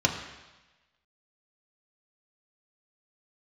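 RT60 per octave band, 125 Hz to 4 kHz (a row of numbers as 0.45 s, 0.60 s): 1.0 s, 1.0 s, 1.1 s, 1.1 s, 1.2 s, 1.2 s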